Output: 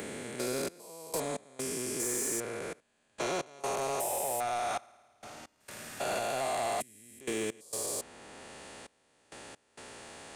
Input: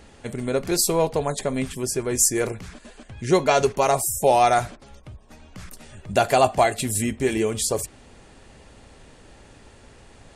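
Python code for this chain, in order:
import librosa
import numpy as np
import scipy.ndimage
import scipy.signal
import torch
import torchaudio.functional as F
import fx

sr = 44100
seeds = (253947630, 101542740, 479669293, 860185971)

y = fx.spec_steps(x, sr, hold_ms=400)
y = fx.highpass(y, sr, hz=440.0, slope=6)
y = fx.high_shelf(y, sr, hz=9700.0, db=9.0)
y = fx.rider(y, sr, range_db=10, speed_s=2.0)
y = fx.room_flutter(y, sr, wall_m=9.4, rt60_s=1.2, at=(4.65, 6.19))
y = fx.step_gate(y, sr, bpm=66, pattern='xxx..x.xx', floor_db=-24.0, edge_ms=4.5)
y = 10.0 ** (-23.5 / 20.0) * np.tanh(y / 10.0 ** (-23.5 / 20.0))
y = fx.band_squash(y, sr, depth_pct=40)
y = y * librosa.db_to_amplitude(-2.5)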